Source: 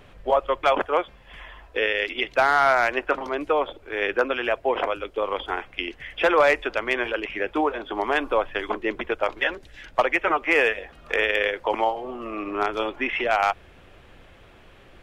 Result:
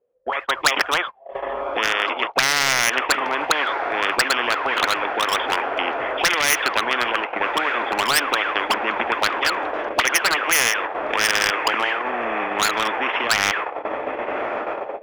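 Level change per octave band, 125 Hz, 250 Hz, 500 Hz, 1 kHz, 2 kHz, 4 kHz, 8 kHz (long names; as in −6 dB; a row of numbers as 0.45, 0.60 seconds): +4.0 dB, −1.0 dB, −2.5 dB, +3.5 dB, +5.0 dB, +11.0 dB, can't be measured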